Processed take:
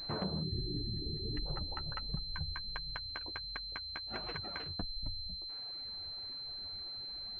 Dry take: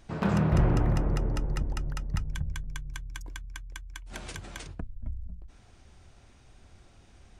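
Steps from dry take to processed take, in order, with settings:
gain on a spectral selection 0:00.42–0:01.46, 450–1,600 Hz −23 dB
reverb reduction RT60 1.4 s
treble cut that deepens with the level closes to 560 Hz, closed at −27 dBFS
low-shelf EQ 400 Hz −9 dB
downward compressor 10 to 1, threshold −41 dBFS, peak gain reduction 14 dB
flanger 1.4 Hz, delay 5.4 ms, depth 8.3 ms, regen −20%
switching amplifier with a slow clock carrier 4,100 Hz
level +10.5 dB

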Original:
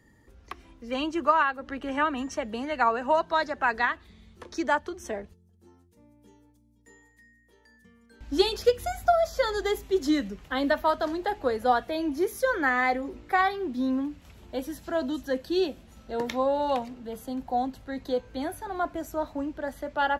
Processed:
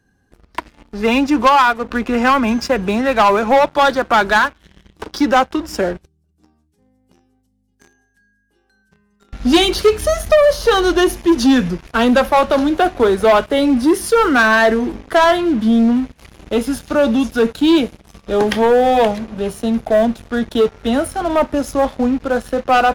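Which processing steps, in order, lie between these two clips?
leveller curve on the samples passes 3
speed change −12%
level +4.5 dB

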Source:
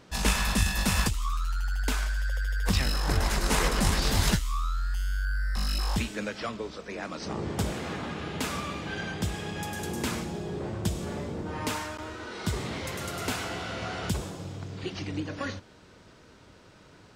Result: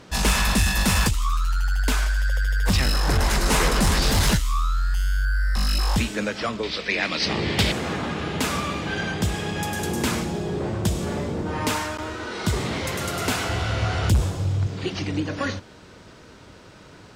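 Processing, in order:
0:13.49–0:14.67: low shelf with overshoot 140 Hz +9 dB, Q 1.5
harmonic generator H 5 −15 dB, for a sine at −10.5 dBFS
0:06.63–0:07.72: flat-topped bell 3,000 Hz +12.5 dB
level +2 dB

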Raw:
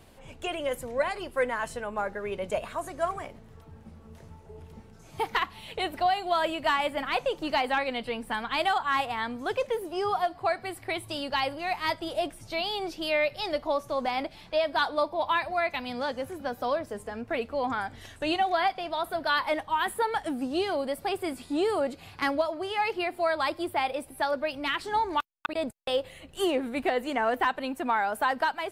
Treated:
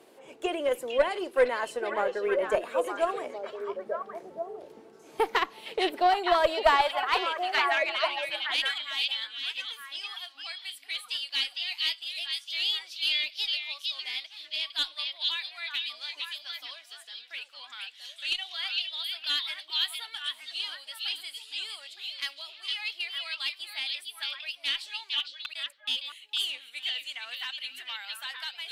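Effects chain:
high-pass filter sweep 370 Hz → 3,200 Hz, 0:06.22–0:08.18
harmonic generator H 2 −13 dB, 7 −30 dB, 8 −41 dB, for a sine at −9 dBFS
echo through a band-pass that steps 458 ms, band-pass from 3,600 Hz, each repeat −1.4 octaves, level 0 dB

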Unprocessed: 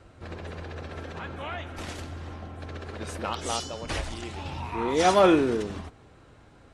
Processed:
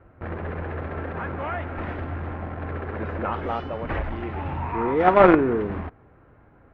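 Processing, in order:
in parallel at −6 dB: log-companded quantiser 2 bits
on the sum: low-pass filter 2,000 Hz 24 dB per octave

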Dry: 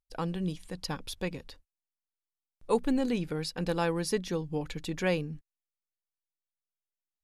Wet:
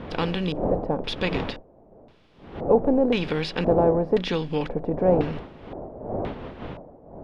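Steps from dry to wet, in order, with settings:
compressor on every frequency bin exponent 0.6
wind on the microphone 510 Hz −38 dBFS
auto-filter low-pass square 0.96 Hz 660–3,300 Hz
level +3 dB

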